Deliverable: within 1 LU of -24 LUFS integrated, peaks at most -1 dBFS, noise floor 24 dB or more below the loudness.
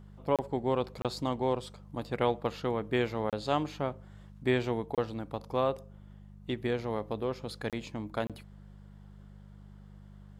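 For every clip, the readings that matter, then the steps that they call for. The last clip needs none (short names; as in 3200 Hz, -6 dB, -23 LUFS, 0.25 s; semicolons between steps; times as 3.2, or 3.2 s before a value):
dropouts 6; longest dropout 27 ms; hum 50 Hz; harmonics up to 200 Hz; hum level -48 dBFS; loudness -33.0 LUFS; peak -13.5 dBFS; loudness target -24.0 LUFS
-> interpolate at 0.36/1.02/3.3/4.95/7.7/8.27, 27 ms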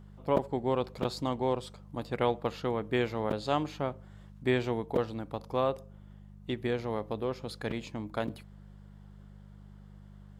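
dropouts 0; hum 50 Hz; harmonics up to 200 Hz; hum level -48 dBFS
-> de-hum 50 Hz, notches 4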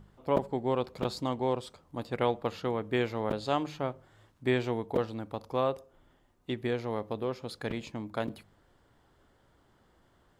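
hum none; loudness -33.0 LUFS; peak -11.5 dBFS; loudness target -24.0 LUFS
-> gain +9 dB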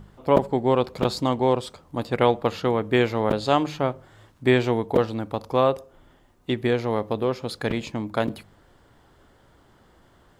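loudness -24.0 LUFS; peak -2.5 dBFS; noise floor -58 dBFS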